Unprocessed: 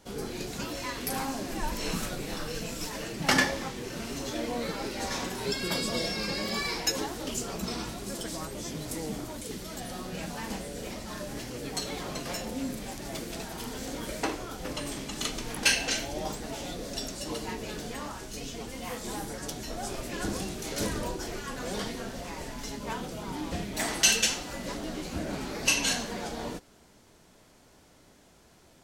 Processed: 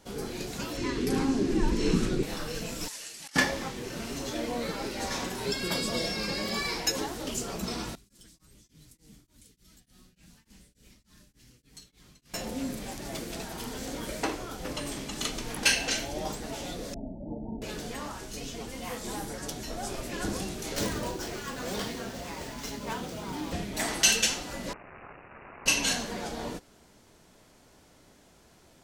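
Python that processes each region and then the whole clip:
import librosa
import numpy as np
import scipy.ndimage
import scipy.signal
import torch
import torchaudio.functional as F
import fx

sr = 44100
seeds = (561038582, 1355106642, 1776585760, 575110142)

y = fx.chain(x, sr, fx.lowpass(hz=7500.0, slope=12),
    fx.low_shelf_res(hz=490.0, db=7.0, q=3.0), at=(0.77, 2.23))
y = fx.chain(y, sr, fx.pre_emphasis(coefficient=0.97),
    fx.over_compress(threshold_db=-39.0, ratio=-0.5),
    fx.lowpass(hz=11000.0, slope=24), at=(2.88, 3.36))
y = fx.chain(y, sr, fx.tone_stack(knobs='6-0-2'),
    fx.tremolo_abs(hz=3.4), at=(7.95, 12.34))
y = fx.chain(y, sr, fx.cheby_ripple(hz=910.0, ripple_db=9),
    fx.low_shelf(hz=190.0, db=10.0), at=(16.94, 17.62))
y = fx.chain(y, sr, fx.highpass(hz=44.0, slope=12),
    fx.high_shelf(hz=6400.0, db=7.0),
    fx.running_max(window=3), at=(20.75, 23.53))
y = fx.chain(y, sr, fx.clip_1bit(),
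    fx.bandpass_q(hz=4900.0, q=3.4),
    fx.resample_bad(factor=8, down='none', up='filtered'), at=(24.73, 25.66))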